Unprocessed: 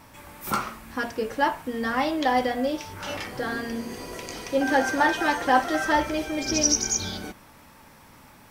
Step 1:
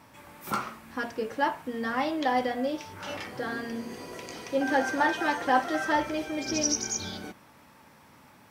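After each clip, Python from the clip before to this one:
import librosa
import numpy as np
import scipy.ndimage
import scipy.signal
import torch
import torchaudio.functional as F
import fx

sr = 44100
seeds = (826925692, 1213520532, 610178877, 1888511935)

y = scipy.signal.sosfilt(scipy.signal.butter(2, 96.0, 'highpass', fs=sr, output='sos'), x)
y = fx.high_shelf(y, sr, hz=5800.0, db=-5.0)
y = y * 10.0 ** (-3.5 / 20.0)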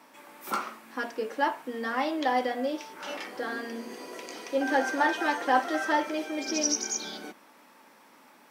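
y = scipy.signal.sosfilt(scipy.signal.butter(4, 240.0, 'highpass', fs=sr, output='sos'), x)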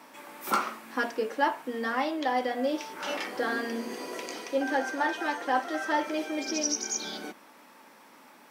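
y = fx.rider(x, sr, range_db=4, speed_s=0.5)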